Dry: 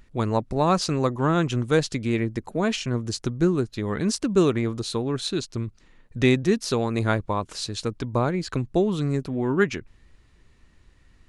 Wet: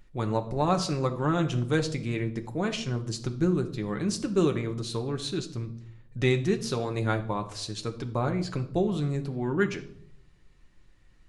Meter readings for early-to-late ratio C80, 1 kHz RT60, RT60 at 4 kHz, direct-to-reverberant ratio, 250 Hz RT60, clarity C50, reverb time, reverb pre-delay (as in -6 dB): 16.5 dB, 0.60 s, 0.50 s, 4.5 dB, 0.90 s, 13.0 dB, 0.70 s, 5 ms